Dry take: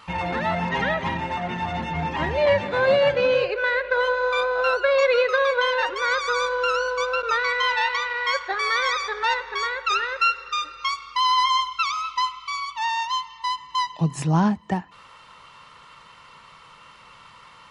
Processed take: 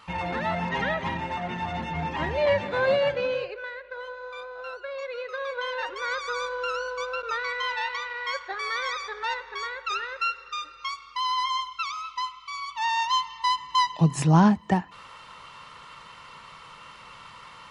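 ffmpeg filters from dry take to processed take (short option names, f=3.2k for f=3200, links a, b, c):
-af "volume=14.5dB,afade=t=out:st=2.85:d=0.9:silence=0.237137,afade=t=in:st=5.16:d=0.79:silence=0.354813,afade=t=in:st=12.51:d=0.69:silence=0.354813"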